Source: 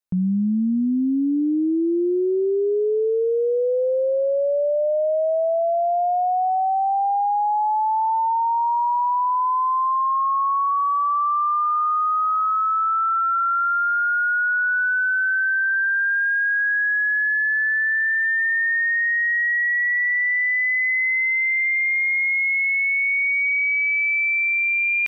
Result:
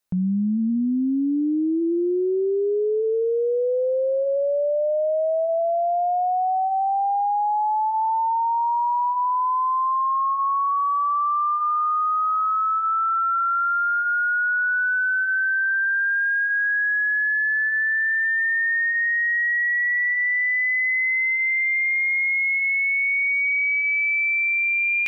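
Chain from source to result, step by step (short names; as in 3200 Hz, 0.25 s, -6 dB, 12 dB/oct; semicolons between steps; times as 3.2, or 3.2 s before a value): de-hum 108.9 Hz, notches 33; dynamic EQ 1100 Hz, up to -5 dB, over -34 dBFS, Q 0.82; limiter -27.5 dBFS, peak gain reduction 12.5 dB; gain +9 dB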